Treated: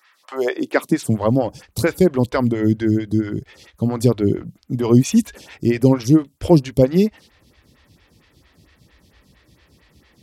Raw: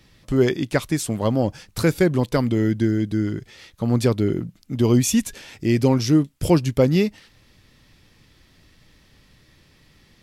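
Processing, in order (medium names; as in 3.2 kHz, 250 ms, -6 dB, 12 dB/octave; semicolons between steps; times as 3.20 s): high-pass sweep 1.3 kHz -> 61 Hz, 0.16–1.40 s; lamp-driven phase shifter 4.4 Hz; trim +4.5 dB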